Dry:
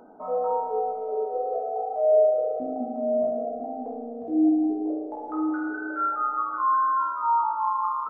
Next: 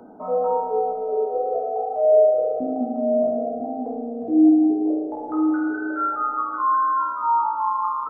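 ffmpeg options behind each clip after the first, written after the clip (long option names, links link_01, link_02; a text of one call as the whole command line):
ffmpeg -i in.wav -filter_complex "[0:a]acrossover=split=190|330[link_01][link_02][link_03];[link_01]acompressor=threshold=-52dB:ratio=6[link_04];[link_04][link_02][link_03]amix=inputs=3:normalize=0,equalizer=frequency=140:width=0.43:gain=9,volume=1.5dB" out.wav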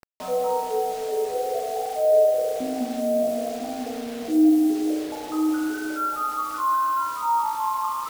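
ffmpeg -i in.wav -af "acrusher=bits=5:mix=0:aa=0.000001,volume=-2.5dB" out.wav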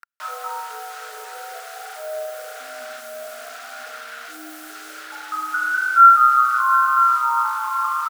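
ffmpeg -i in.wav -filter_complex "[0:a]highpass=frequency=1400:width_type=q:width=8.8,asplit=2[link_01][link_02];[link_02]adelay=705,lowpass=frequency=2000:poles=1,volume=-10.5dB,asplit=2[link_03][link_04];[link_04]adelay=705,lowpass=frequency=2000:poles=1,volume=0.3,asplit=2[link_05][link_06];[link_06]adelay=705,lowpass=frequency=2000:poles=1,volume=0.3[link_07];[link_01][link_03][link_05][link_07]amix=inputs=4:normalize=0" out.wav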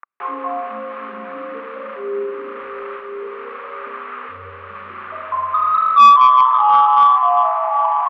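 ffmpeg -i in.wav -af "aeval=exprs='clip(val(0),-1,0.299)':channel_layout=same,highpass=frequency=380:width_type=q:width=0.5412,highpass=frequency=380:width_type=q:width=1.307,lowpass=frequency=2700:width_type=q:width=0.5176,lowpass=frequency=2700:width_type=q:width=0.7071,lowpass=frequency=2700:width_type=q:width=1.932,afreqshift=-220,acontrast=50" out.wav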